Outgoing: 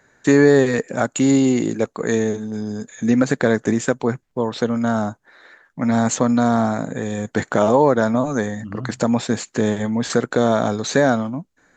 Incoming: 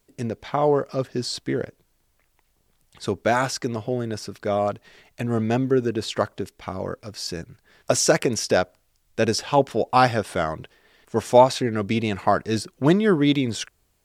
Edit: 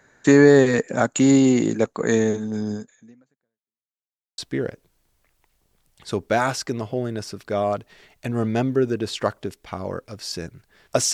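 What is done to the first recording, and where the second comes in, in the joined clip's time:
outgoing
2.74–3.88 fade out exponential
3.88–4.38 mute
4.38 switch to incoming from 1.33 s

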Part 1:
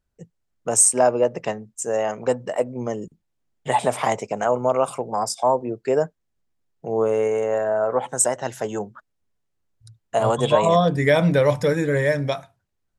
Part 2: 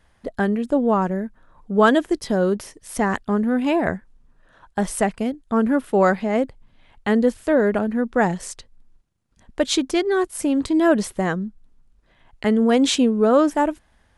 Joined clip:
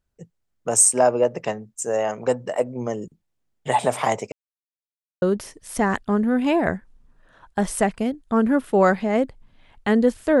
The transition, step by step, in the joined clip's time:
part 1
4.32–5.22 mute
5.22 switch to part 2 from 2.42 s

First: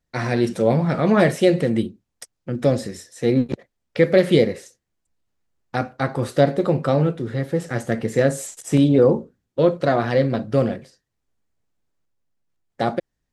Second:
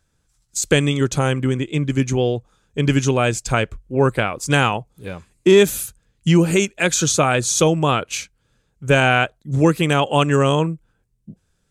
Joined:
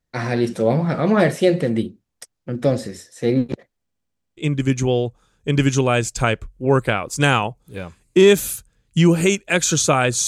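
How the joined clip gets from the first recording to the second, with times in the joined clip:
first
3.81 stutter in place 0.07 s, 8 plays
4.37 switch to second from 1.67 s

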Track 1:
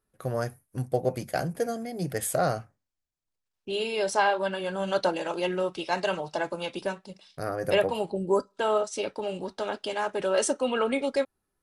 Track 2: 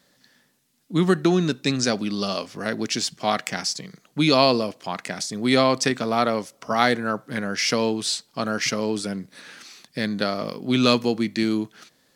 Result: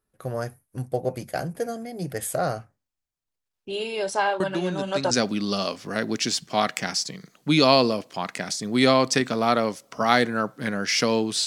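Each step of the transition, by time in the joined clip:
track 1
4.4 add track 2 from 1.1 s 0.71 s -9 dB
5.11 switch to track 2 from 1.81 s

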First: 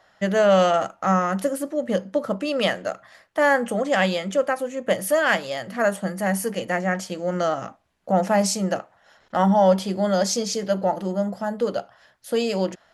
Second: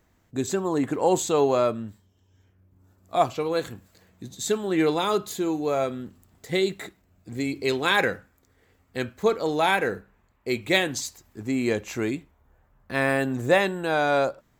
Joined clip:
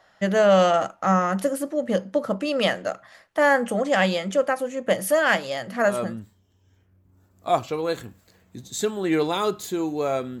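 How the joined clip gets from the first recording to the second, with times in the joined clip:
first
6.02 switch to second from 1.69 s, crossfade 0.36 s equal-power

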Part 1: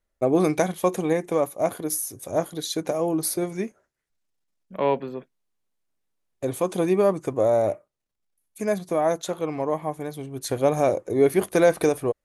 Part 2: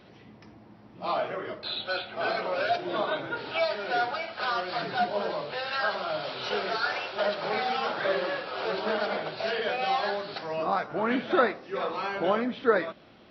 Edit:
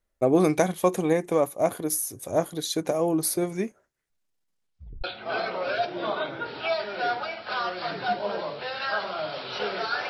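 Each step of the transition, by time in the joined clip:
part 1
4.47 tape stop 0.57 s
5.04 switch to part 2 from 1.95 s

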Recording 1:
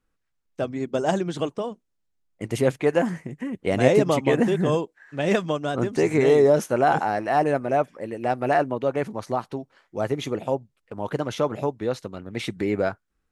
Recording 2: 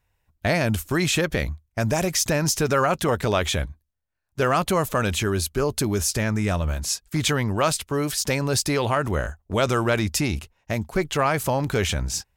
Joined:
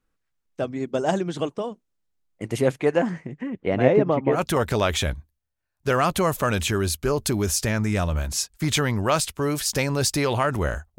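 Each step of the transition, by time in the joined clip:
recording 1
2.89–4.41 LPF 7700 Hz -> 1200 Hz
4.36 switch to recording 2 from 2.88 s, crossfade 0.10 s

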